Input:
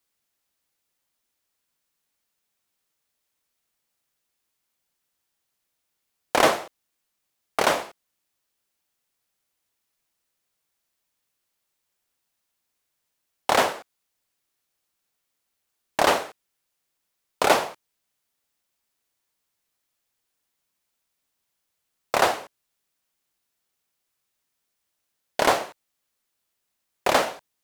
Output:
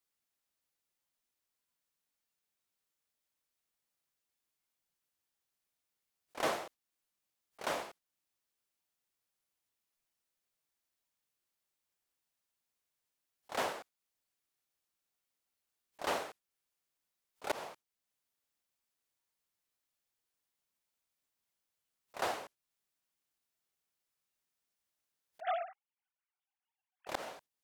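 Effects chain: 25.40–27.07 s: formants replaced by sine waves; spectral noise reduction 9 dB; slow attack 618 ms

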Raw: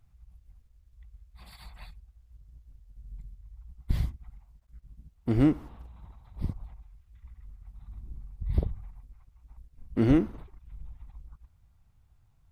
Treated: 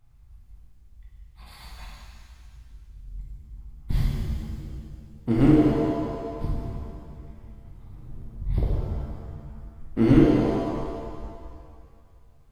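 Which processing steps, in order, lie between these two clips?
7.38–8.31 s: comb filter that takes the minimum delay 8.6 ms; pitch-shifted reverb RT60 2 s, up +7 st, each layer -8 dB, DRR -5 dB

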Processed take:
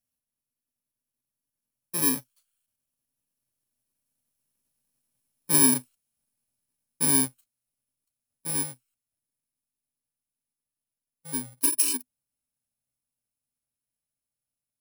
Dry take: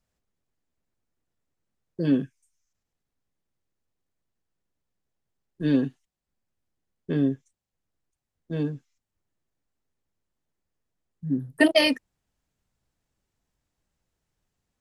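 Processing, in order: bit-reversed sample order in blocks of 64 samples; Doppler pass-by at 5.09 s, 9 m/s, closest 11 m; tilt EQ +2 dB/octave; compression 2.5:1, threshold -23 dBFS, peak gain reduction 7 dB; graphic EQ with 31 bands 125 Hz +8 dB, 250 Hz +11 dB, 630 Hz +7 dB, 10 kHz +9 dB; trim +2.5 dB

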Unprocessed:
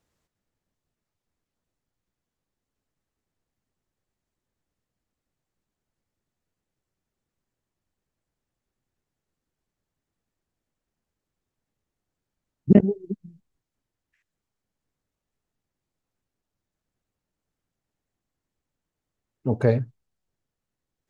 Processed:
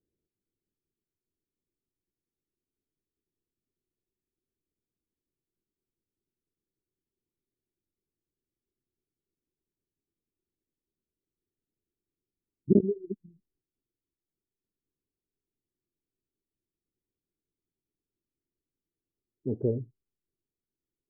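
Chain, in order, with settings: four-pole ladder low-pass 420 Hz, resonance 60%

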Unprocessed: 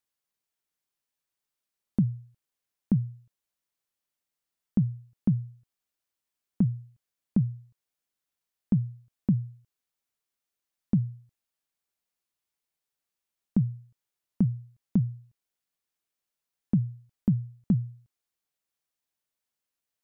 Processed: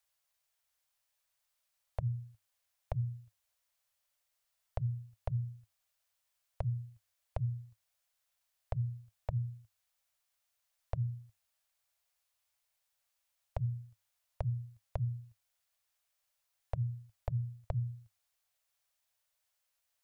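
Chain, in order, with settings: compression, threshold -26 dBFS, peak gain reduction 7.5 dB; Chebyshev band-stop 110–560 Hz, order 3; de-hum 94.38 Hz, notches 4; trim +5.5 dB

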